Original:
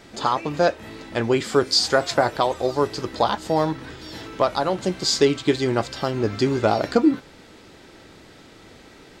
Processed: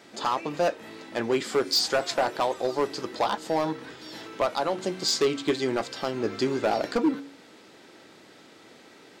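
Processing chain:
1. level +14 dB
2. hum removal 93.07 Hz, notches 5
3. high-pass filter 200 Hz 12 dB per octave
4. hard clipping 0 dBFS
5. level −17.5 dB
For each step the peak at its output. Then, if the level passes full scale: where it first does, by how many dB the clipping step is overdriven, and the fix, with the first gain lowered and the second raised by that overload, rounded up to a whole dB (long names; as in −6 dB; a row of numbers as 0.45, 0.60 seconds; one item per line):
+9.0, +8.5, +9.5, 0.0, −17.5 dBFS
step 1, 9.5 dB
step 1 +4 dB, step 5 −7.5 dB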